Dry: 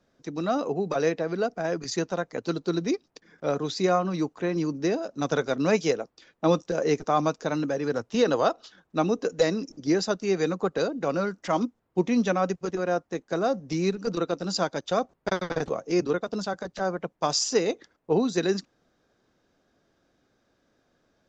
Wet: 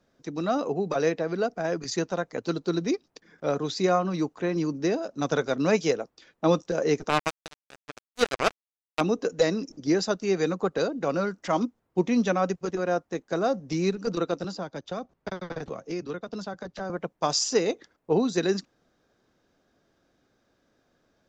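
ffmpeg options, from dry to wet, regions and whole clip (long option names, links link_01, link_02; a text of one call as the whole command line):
ffmpeg -i in.wav -filter_complex "[0:a]asettb=1/sr,asplit=3[link_01][link_02][link_03];[link_01]atrim=end=7.094[link_04];[link_02]atrim=start=7.09:end=9.01,asetpts=PTS-STARTPTS,afade=type=in:duration=0.004:curve=qsin,afade=type=out:start_time=1.916:duration=0.004:curve=qsin,highpass=frequency=220:poles=1,acrusher=bits=2:mix=0:aa=0.5[link_05];[link_03]atrim=start=9.006[link_06];[link_04][link_05]acrossfade=duration=0.004:curve1=hsin:curve2=qsin[link_07];[link_07][link_06]acrossfade=duration=0.004:curve1=qsin:curve2=hsin,asettb=1/sr,asplit=3[link_08][link_09][link_10];[link_08]atrim=end=14.444[link_11];[link_09]atrim=start=14.44:end=16.9,asetpts=PTS-STARTPTS,afade=type=in:duration=0.004:curve=qsin,afade=type=out:start_time=2.456:duration=0.004:curve=qsin,lowpass=6200,acrossover=split=250|1300[link_12][link_13][link_14];[link_12]acompressor=threshold=-38dB:ratio=4[link_15];[link_13]acompressor=threshold=-35dB:ratio=4[link_16];[link_14]acompressor=threshold=-44dB:ratio=4[link_17];[link_15][link_16][link_17]amix=inputs=3:normalize=0[link_18];[link_10]atrim=start=16.896[link_19];[link_11][link_18]acrossfade=duration=0.004:curve1=hsin:curve2=qsin[link_20];[link_20][link_19]acrossfade=duration=0.004:curve1=qsin:curve2=hsin" out.wav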